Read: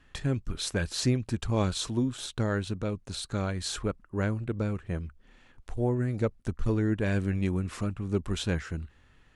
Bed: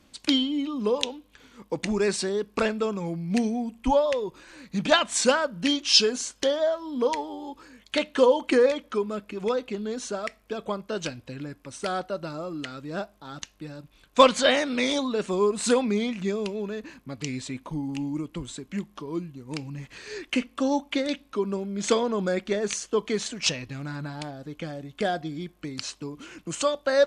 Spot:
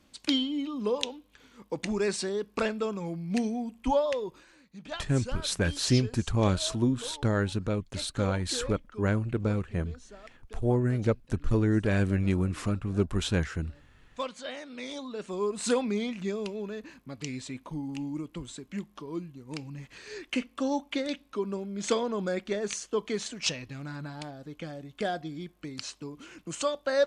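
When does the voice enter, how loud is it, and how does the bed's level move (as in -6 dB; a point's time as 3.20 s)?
4.85 s, +2.0 dB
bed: 4.35 s -4 dB
4.74 s -18.5 dB
14.46 s -18.5 dB
15.67 s -4.5 dB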